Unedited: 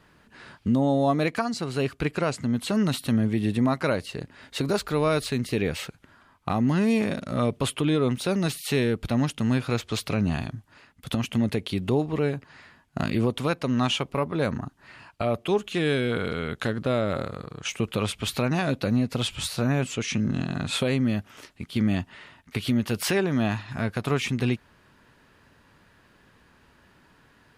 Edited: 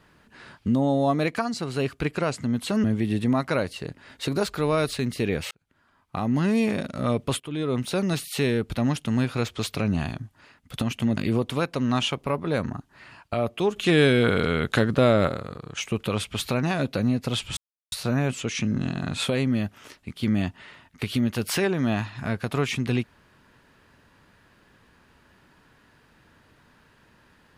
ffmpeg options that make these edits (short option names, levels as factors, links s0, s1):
-filter_complex "[0:a]asplit=8[s0][s1][s2][s3][s4][s5][s6][s7];[s0]atrim=end=2.842[s8];[s1]atrim=start=3.168:end=5.84,asetpts=PTS-STARTPTS,afade=t=out:st=2.668:d=0.004:c=hsin[s9];[s2]atrim=start=5.84:end=7.73,asetpts=PTS-STARTPTS,afade=t=in:d=0.91,afade=t=out:st=1.886:d=0.004:c=hsin:silence=0.158489[s10];[s3]atrim=start=7.73:end=11.502,asetpts=PTS-STARTPTS,afade=t=in:d=0.44:silence=0.158489[s11];[s4]atrim=start=13.048:end=15.642[s12];[s5]atrim=start=15.638:end=17.162,asetpts=PTS-STARTPTS,volume=2[s13];[s6]atrim=start=17.158:end=19.45,asetpts=PTS-STARTPTS,afade=t=out:st=2.288:d=0.004:c=hsin,apad=pad_dur=0.35[s14];[s7]atrim=start=19.45,asetpts=PTS-STARTPTS,afade=t=in:d=0.004:c=hsin[s15];[s9][s10][s11]concat=n=3:v=0:a=1[s16];[s8][s16]acrossfade=d=0.004:c1=hsin:c2=hsin[s17];[s17][s12]acrossfade=d=0.004:c1=hsin:c2=hsin[s18];[s18][s13]acrossfade=d=0.004:c1=hsin:c2=hsin[s19];[s14][s15]concat=n=2:v=0:a=1[s20];[s19][s20]acrossfade=d=0.004:c1=hsin:c2=hsin"